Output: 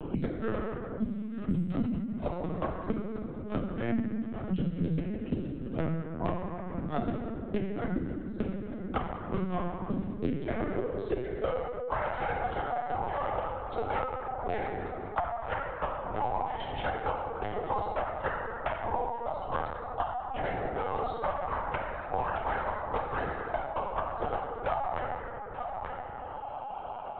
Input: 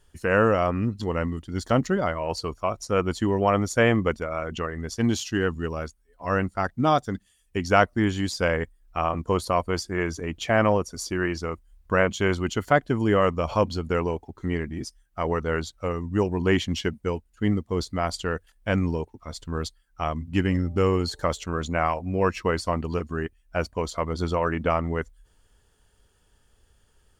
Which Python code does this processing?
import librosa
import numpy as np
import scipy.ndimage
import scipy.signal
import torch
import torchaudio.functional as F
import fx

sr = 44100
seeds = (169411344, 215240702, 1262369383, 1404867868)

p1 = fx.wiener(x, sr, points=25)
p2 = fx.high_shelf(p1, sr, hz=2800.0, db=-3.0)
p3 = fx.cheby_harmonics(p2, sr, harmonics=(3, 6), levels_db=(-43, -20), full_scale_db=-4.5)
p4 = fx.over_compress(p3, sr, threshold_db=-26.0, ratio=-0.5)
p5 = fx.filter_sweep_highpass(p4, sr, from_hz=180.0, to_hz=770.0, start_s=10.13, end_s=11.71, q=6.8)
p6 = fx.gate_flip(p5, sr, shuts_db=-14.0, range_db=-40)
p7 = p6 + fx.echo_single(p6, sr, ms=885, db=-23.0, dry=0)
p8 = fx.rev_plate(p7, sr, seeds[0], rt60_s=1.3, hf_ratio=0.6, predelay_ms=0, drr_db=-3.0)
p9 = fx.lpc_vocoder(p8, sr, seeds[1], excitation='pitch_kept', order=16)
p10 = fx.band_squash(p9, sr, depth_pct=100)
y = p10 * librosa.db_to_amplitude(-3.5)